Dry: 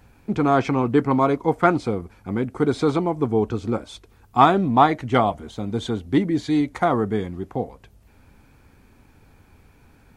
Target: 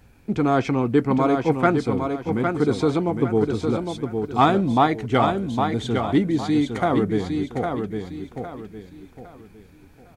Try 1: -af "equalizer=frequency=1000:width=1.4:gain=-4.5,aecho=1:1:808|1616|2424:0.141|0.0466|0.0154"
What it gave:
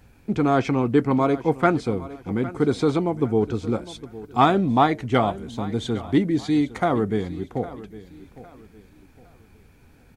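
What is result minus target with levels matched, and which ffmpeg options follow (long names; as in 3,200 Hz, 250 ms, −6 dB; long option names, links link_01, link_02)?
echo-to-direct −11.5 dB
-af "equalizer=frequency=1000:width=1.4:gain=-4.5,aecho=1:1:808|1616|2424|3232:0.531|0.175|0.0578|0.0191"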